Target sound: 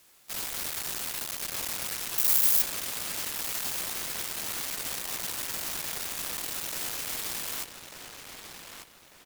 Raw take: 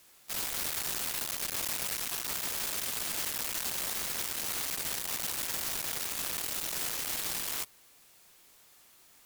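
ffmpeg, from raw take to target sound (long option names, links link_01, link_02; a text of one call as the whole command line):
ffmpeg -i in.wav -filter_complex "[0:a]asettb=1/sr,asplit=3[link_01][link_02][link_03];[link_01]atrim=end=2.184[link_04];[link_02]atrim=start=2.18:end=2.62,asetpts=PTS-STARTPTS,afade=type=in:duration=0.004:curve=qsin,afade=type=out:start_time=0.436:duration=0.004:curve=qsin,aemphasis=mode=production:type=50kf[link_05];[link_03]atrim=start=2.616[link_06];[link_04][link_05]acrossfade=duration=0.004:curve1=hsin:curve2=qsin[link_07];[link_07][link_06]acrossfade=duration=0.004:curve1=qsin:curve2=hsin,asplit=2[link_08][link_09];[link_09]adelay=1195,lowpass=frequency=4400:poles=1,volume=-6dB,asplit=2[link_10][link_11];[link_11]adelay=1195,lowpass=frequency=4400:poles=1,volume=0.36,asplit=2[link_12][link_13];[link_13]adelay=1195,lowpass=frequency=4400:poles=1,volume=0.36,asplit=2[link_14][link_15];[link_15]adelay=1195,lowpass=frequency=4400:poles=1,volume=0.36[link_16];[link_08][link_10][link_12][link_14][link_16]amix=inputs=5:normalize=0" out.wav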